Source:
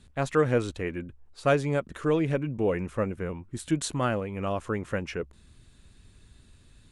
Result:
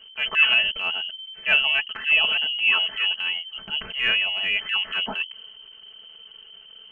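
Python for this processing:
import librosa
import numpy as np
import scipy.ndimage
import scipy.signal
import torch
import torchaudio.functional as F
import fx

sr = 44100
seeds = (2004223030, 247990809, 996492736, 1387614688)

y = x + 0.82 * np.pad(x, (int(4.5 * sr / 1000.0), 0))[:len(x)]
y = fx.freq_invert(y, sr, carrier_hz=3100)
y = fx.transient(y, sr, attack_db=-9, sustain_db=4)
y = F.gain(torch.from_numpy(y), 4.5).numpy()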